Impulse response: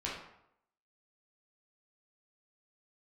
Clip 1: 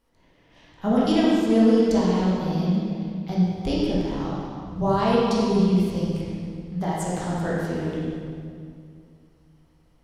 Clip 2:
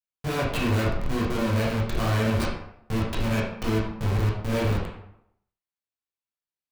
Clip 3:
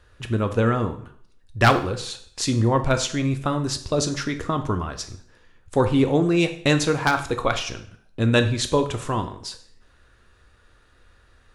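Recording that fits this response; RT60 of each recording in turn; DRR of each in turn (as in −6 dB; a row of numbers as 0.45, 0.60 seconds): 2; 2.3, 0.75, 0.60 seconds; −7.0, −6.0, 6.5 decibels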